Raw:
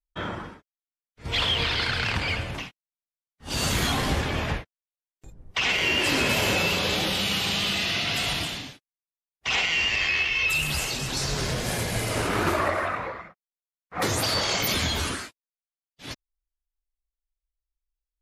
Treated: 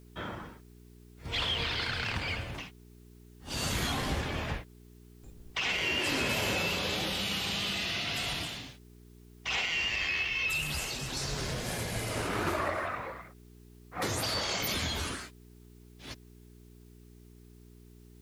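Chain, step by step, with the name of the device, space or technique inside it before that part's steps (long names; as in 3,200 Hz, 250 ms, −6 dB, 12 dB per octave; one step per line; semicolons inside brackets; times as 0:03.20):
video cassette with head-switching buzz (hum with harmonics 60 Hz, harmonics 7, −47 dBFS −4 dB per octave; white noise bed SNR 33 dB)
level −7 dB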